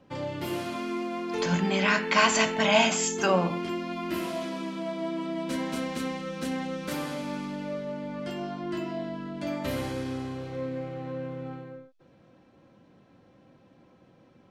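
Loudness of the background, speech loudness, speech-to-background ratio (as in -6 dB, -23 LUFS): -33.5 LUFS, -24.5 LUFS, 9.0 dB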